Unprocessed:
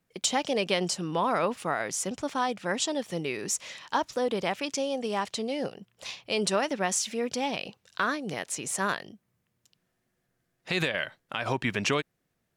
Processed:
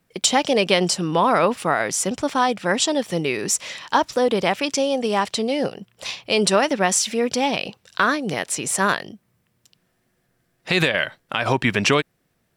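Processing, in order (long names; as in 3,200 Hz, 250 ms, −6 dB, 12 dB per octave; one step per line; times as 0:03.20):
notch filter 6,600 Hz, Q 17
level +9 dB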